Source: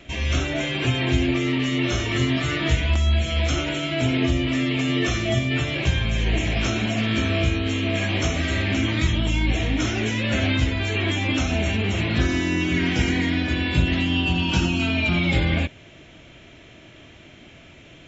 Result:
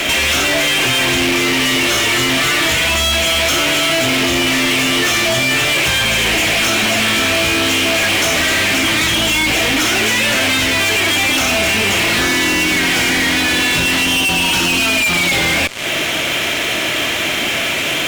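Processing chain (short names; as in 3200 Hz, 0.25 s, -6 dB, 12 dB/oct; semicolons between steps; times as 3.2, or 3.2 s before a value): HPF 890 Hz 6 dB/oct; compressor 4:1, threshold -42 dBFS, peak gain reduction 17 dB; fuzz box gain 52 dB, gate -58 dBFS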